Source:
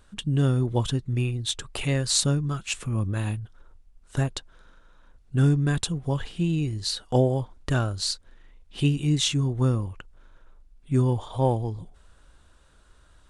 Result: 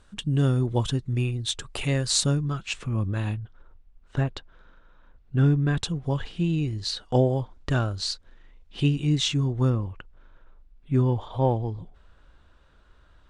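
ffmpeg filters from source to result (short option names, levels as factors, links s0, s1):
-af "asetnsamples=n=441:p=0,asendcmd='2.44 lowpass f 5300;3.34 lowpass f 3300;5.77 lowpass f 5900;9.7 lowpass f 3700',lowpass=9700"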